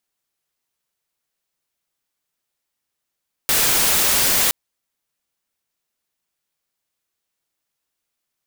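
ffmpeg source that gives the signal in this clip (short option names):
-f lavfi -i "anoisesrc=c=white:a=0.245:d=1.02:r=44100:seed=1"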